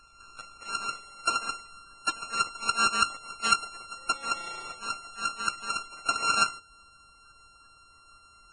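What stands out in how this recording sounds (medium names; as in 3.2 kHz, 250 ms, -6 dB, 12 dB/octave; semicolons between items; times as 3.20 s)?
a buzz of ramps at a fixed pitch in blocks of 32 samples; Vorbis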